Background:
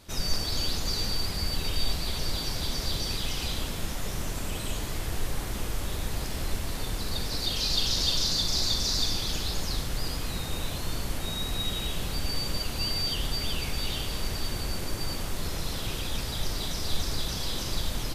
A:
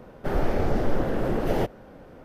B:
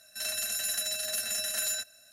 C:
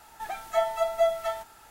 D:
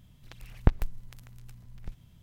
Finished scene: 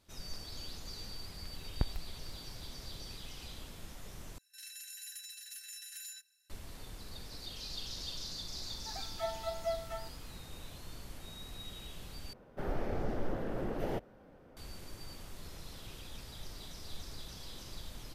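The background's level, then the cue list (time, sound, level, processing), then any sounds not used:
background −16 dB
0:01.14: mix in D −11.5 dB
0:04.38: overwrite with B −15.5 dB + Butterworth high-pass 1,600 Hz 48 dB per octave
0:08.66: mix in C −12.5 dB + inverse Chebyshev high-pass filter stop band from 180 Hz
0:12.33: overwrite with A −11.5 dB

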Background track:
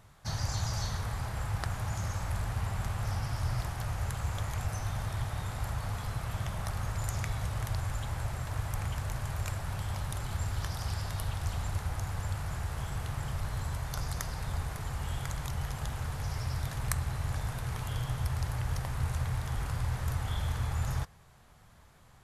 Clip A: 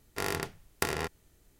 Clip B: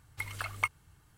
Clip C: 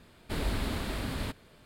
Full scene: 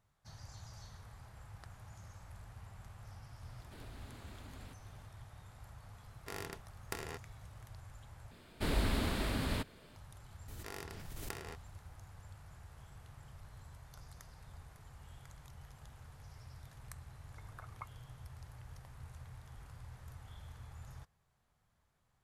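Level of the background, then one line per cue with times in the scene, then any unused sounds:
background track −19 dB
0:03.42: mix in C −7.5 dB + downward compressor 2 to 1, threshold −53 dBFS
0:06.10: mix in A −12 dB
0:08.31: overwrite with C −1 dB
0:10.48: mix in A −15.5 dB + background raised ahead of every attack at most 22 dB per second
0:17.18: mix in B −12 dB + low-pass filter 1,400 Hz 24 dB per octave

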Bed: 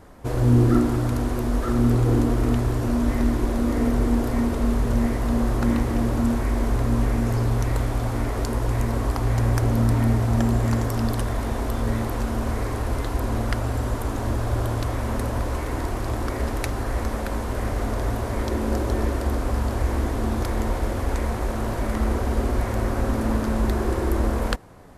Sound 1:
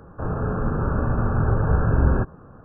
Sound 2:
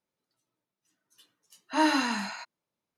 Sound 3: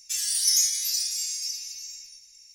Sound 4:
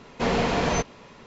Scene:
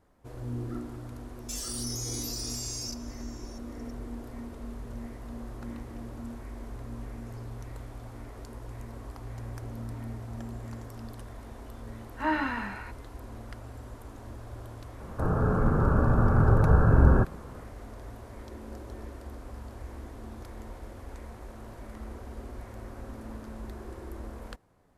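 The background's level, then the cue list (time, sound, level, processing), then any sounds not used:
bed −18.5 dB
0:01.39: mix in 3 −3.5 dB + output level in coarse steps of 17 dB
0:10.47: mix in 2 −5 dB + low-pass with resonance 1,900 Hz, resonance Q 1.5
0:15.00: mix in 1 −0.5 dB
not used: 4

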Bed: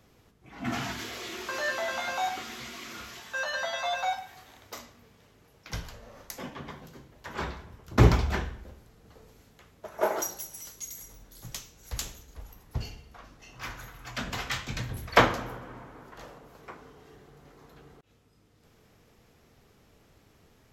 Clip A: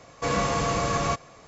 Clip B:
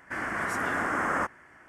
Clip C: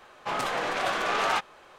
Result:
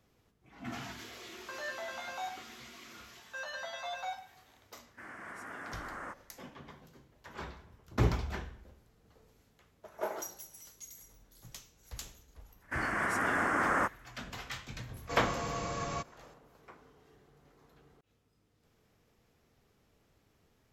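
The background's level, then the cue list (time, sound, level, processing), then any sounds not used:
bed −9.5 dB
0:04.87: mix in B −15.5 dB + low-shelf EQ 66 Hz −10.5 dB
0:12.61: mix in B −1.5 dB + downward expander −50 dBFS
0:14.87: mix in A −11.5 dB
not used: C

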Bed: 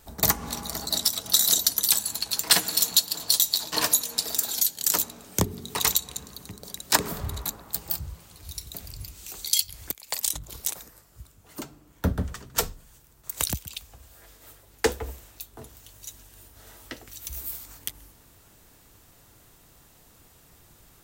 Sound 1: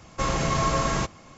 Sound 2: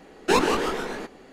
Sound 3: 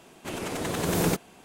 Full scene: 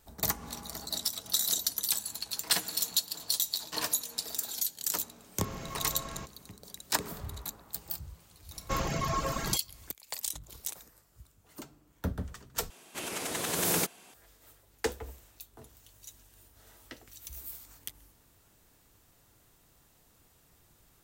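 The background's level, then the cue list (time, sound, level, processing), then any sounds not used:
bed −8.5 dB
0:05.20: mix in 1 −17 dB
0:08.51: mix in 1 −5 dB + reverb reduction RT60 1.7 s
0:12.70: overwrite with 3 −4 dB + spectral tilt +2.5 dB per octave
not used: 2

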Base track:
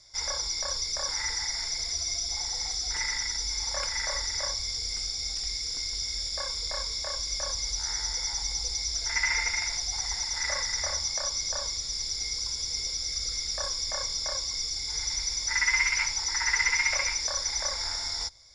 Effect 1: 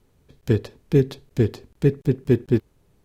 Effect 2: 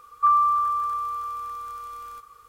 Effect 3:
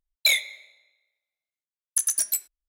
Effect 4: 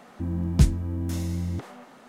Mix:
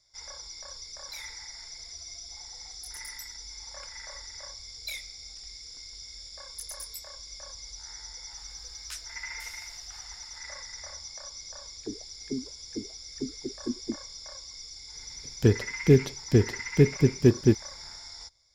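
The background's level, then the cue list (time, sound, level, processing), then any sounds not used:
base track −12 dB
0:00.87: mix in 3 −15 dB + downward compressor 4 to 1, threshold −27 dBFS
0:04.62: mix in 3 −17.5 dB
0:08.31: mix in 4 −5 dB + Chebyshev high-pass filter 1,400 Hz, order 3
0:11.36: mix in 1 −5 dB + envelope filter 250–2,300 Hz, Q 8.9, down, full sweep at −13.5 dBFS
0:14.95: mix in 1 −1 dB
not used: 2

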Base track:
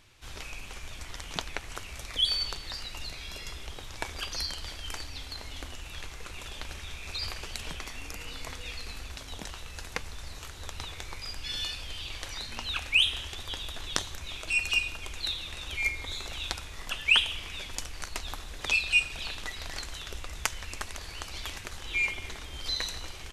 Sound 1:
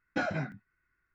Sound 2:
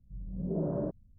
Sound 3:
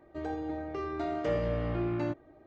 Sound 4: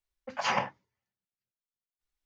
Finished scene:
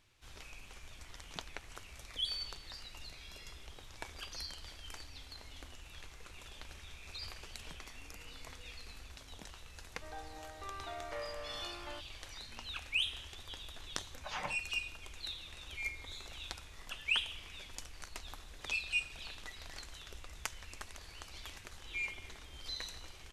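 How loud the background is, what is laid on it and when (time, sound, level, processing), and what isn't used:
base track −10.5 dB
0:09.87: mix in 3 −5 dB + Chebyshev high-pass filter 930 Hz
0:13.87: mix in 4 −13.5 dB + comb filter 6.6 ms
not used: 1, 2

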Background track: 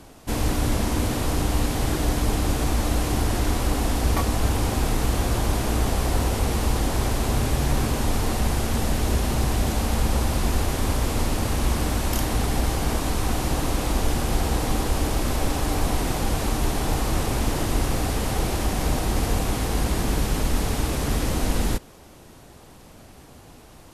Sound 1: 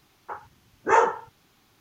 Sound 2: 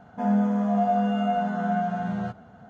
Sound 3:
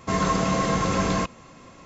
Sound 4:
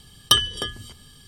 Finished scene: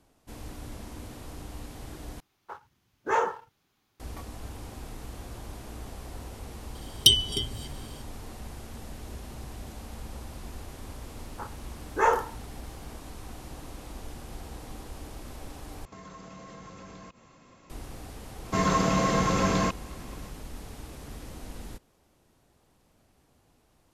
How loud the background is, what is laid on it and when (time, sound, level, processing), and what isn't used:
background track −18.5 dB
0:02.20: overwrite with 1 −9.5 dB + leveller curve on the samples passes 1
0:06.75: mix in 4 −0.5 dB + brick-wall band-stop 440–2,000 Hz
0:11.10: mix in 1 −4 dB
0:15.85: overwrite with 3 −8.5 dB + downward compressor 4 to 1, threshold −37 dBFS
0:18.45: mix in 3 −1.5 dB
not used: 2

